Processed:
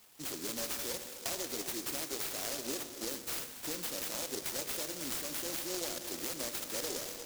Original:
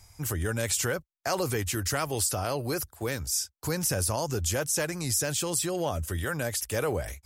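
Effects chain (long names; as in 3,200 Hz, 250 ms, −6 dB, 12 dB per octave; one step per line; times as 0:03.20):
high-pass filter 250 Hz 24 dB per octave
notch filter 440 Hz, Q 12
downward compressor, threshold −33 dBFS, peak gain reduction 9.5 dB
convolution reverb, pre-delay 3 ms, DRR 6 dB
short delay modulated by noise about 5,600 Hz, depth 0.3 ms
level −2 dB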